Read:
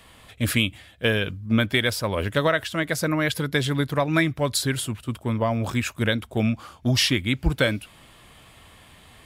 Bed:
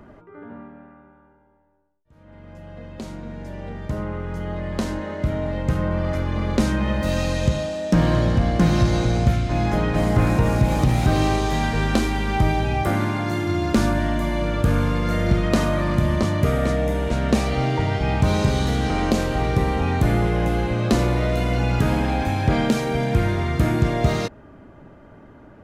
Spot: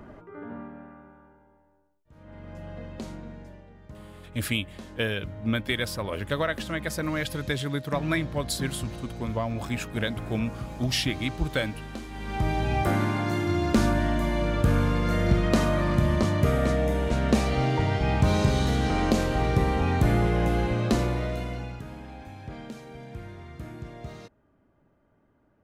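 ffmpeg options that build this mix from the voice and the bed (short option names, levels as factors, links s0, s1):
-filter_complex "[0:a]adelay=3950,volume=0.501[s0];[1:a]volume=5.62,afade=t=out:st=2.66:d=1:silence=0.125893,afade=t=in:st=12.09:d=0.68:silence=0.177828,afade=t=out:st=20.66:d=1.16:silence=0.133352[s1];[s0][s1]amix=inputs=2:normalize=0"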